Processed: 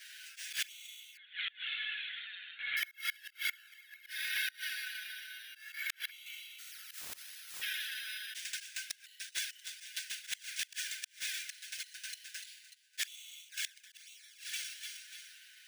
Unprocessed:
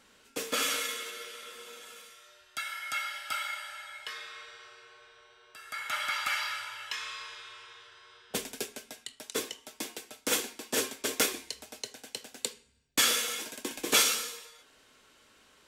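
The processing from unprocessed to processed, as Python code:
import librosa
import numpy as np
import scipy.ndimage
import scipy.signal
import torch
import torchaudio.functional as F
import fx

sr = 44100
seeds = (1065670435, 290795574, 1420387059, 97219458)

y = scipy.signal.sosfilt(scipy.signal.cheby1(8, 1.0, 1500.0, 'highpass', fs=sr, output='sos'), x)
y = fx.rev_fdn(y, sr, rt60_s=1.4, lf_ratio=1.0, hf_ratio=0.3, size_ms=49.0, drr_db=18.5)
y = fx.rider(y, sr, range_db=4, speed_s=2.0)
y = fx.echo_feedback(y, sr, ms=295, feedback_pct=52, wet_db=-18)
y = fx.auto_swell(y, sr, attack_ms=407.0)
y = fx.env_flanger(y, sr, rest_ms=8.4, full_db=-35.0)
y = np.repeat(scipy.signal.resample_poly(y, 1, 3), 3)[:len(y)]
y = fx.lpc_vocoder(y, sr, seeds[0], excitation='pitch_kept', order=16, at=(1.17, 2.77))
y = fx.gate_flip(y, sr, shuts_db=-37.0, range_db=-26)
y = fx.spectral_comp(y, sr, ratio=10.0, at=(6.58, 7.61), fade=0.02)
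y = y * librosa.db_to_amplitude(14.0)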